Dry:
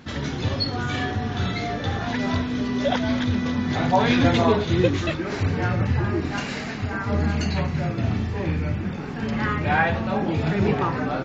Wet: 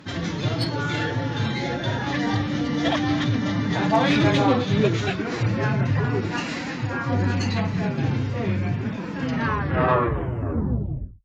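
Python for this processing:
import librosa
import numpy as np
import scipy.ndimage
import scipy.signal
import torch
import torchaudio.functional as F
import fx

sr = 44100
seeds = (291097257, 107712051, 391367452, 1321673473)

y = fx.tape_stop_end(x, sr, length_s=2.01)
y = fx.tube_stage(y, sr, drive_db=12.0, bias=0.3)
y = scipy.signal.sosfilt(scipy.signal.butter(2, 57.0, 'highpass', fs=sr, output='sos'), y)
y = fx.pitch_keep_formants(y, sr, semitones=3.0)
y = y * librosa.db_to_amplitude(2.0)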